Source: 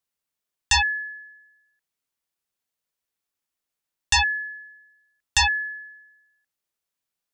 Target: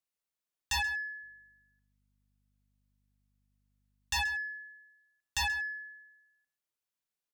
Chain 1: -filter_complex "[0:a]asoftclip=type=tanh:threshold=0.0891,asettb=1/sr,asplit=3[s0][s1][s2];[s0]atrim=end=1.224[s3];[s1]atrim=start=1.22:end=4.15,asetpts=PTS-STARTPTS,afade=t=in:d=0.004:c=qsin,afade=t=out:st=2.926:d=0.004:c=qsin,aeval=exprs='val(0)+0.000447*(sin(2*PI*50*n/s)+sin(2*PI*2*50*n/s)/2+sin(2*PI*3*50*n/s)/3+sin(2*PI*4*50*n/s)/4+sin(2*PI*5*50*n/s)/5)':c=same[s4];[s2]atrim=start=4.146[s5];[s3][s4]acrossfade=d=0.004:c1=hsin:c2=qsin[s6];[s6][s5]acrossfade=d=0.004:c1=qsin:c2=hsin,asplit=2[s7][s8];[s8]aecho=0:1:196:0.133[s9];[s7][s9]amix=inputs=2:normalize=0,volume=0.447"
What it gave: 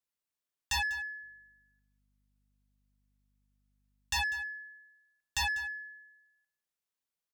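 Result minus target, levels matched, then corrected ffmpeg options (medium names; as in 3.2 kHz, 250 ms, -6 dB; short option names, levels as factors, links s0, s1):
echo 65 ms late
-filter_complex "[0:a]asoftclip=type=tanh:threshold=0.0891,asettb=1/sr,asplit=3[s0][s1][s2];[s0]atrim=end=1.224[s3];[s1]atrim=start=1.22:end=4.15,asetpts=PTS-STARTPTS,afade=t=in:d=0.004:c=qsin,afade=t=out:st=2.926:d=0.004:c=qsin,aeval=exprs='val(0)+0.000447*(sin(2*PI*50*n/s)+sin(2*PI*2*50*n/s)/2+sin(2*PI*3*50*n/s)/3+sin(2*PI*4*50*n/s)/4+sin(2*PI*5*50*n/s)/5)':c=same[s4];[s2]atrim=start=4.146[s5];[s3][s4]acrossfade=d=0.004:c1=hsin:c2=qsin[s6];[s6][s5]acrossfade=d=0.004:c1=qsin:c2=hsin,asplit=2[s7][s8];[s8]aecho=0:1:131:0.133[s9];[s7][s9]amix=inputs=2:normalize=0,volume=0.447"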